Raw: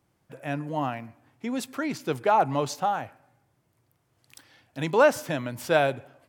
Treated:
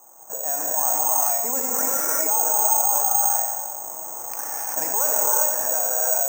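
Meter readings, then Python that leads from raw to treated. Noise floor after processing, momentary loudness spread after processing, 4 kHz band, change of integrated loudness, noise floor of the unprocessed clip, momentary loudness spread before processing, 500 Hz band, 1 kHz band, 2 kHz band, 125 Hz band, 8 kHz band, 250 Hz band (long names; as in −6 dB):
−36 dBFS, 12 LU, −2.5 dB, +7.0 dB, −71 dBFS, 16 LU, −3.5 dB, +1.0 dB, −4.5 dB, below −20 dB, +25.0 dB, −10.0 dB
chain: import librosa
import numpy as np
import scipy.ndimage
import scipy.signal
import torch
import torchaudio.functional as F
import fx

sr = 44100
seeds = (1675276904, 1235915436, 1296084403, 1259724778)

p1 = fx.fade_out_tail(x, sr, length_s=1.06)
p2 = fx.recorder_agc(p1, sr, target_db=-10.0, rise_db_per_s=7.8, max_gain_db=30)
p3 = fx.ladder_bandpass(p2, sr, hz=960.0, resonance_pct=40)
p4 = fx.env_lowpass(p3, sr, base_hz=1000.0, full_db=-21.0)
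p5 = p4 + fx.echo_feedback(p4, sr, ms=89, feedback_pct=35, wet_db=-15.5, dry=0)
p6 = fx.rev_gated(p5, sr, seeds[0], gate_ms=420, shape='rising', drr_db=-7.5)
p7 = (np.kron(scipy.signal.resample_poly(p6, 1, 6), np.eye(6)[0]) * 6)[:len(p6)]
p8 = fx.env_flatten(p7, sr, amount_pct=70)
y = p8 * 10.0 ** (-9.0 / 20.0)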